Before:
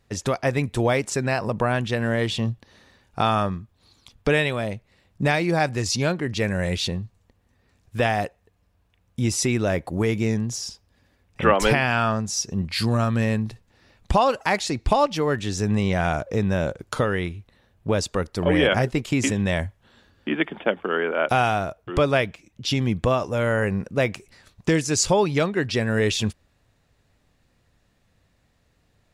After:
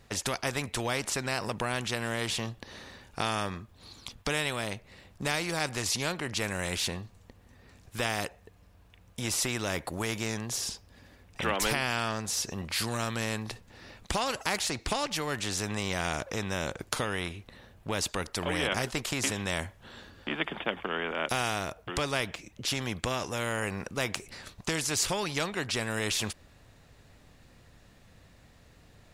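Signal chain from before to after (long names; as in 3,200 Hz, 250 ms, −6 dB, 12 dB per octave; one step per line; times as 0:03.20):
0:00.61–0:01.24: high-shelf EQ 9,700 Hz −5 dB
every bin compressed towards the loudest bin 2 to 1
level −3.5 dB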